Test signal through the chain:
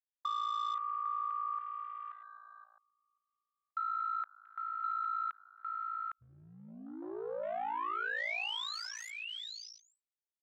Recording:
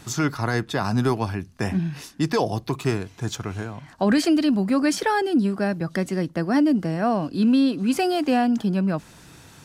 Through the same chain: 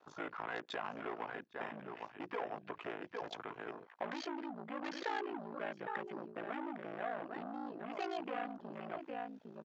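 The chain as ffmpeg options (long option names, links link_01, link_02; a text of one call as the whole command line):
ffmpeg -i in.wav -af "aecho=1:1:807:0.335,aresample=16000,asoftclip=type=hard:threshold=-21.5dB,aresample=44100,aeval=exprs='val(0)*sin(2*PI*28*n/s)':channel_layout=same,acompressor=threshold=-28dB:ratio=6,highpass=470,lowpass=3600,afwtdn=0.00501,volume=-5dB" out.wav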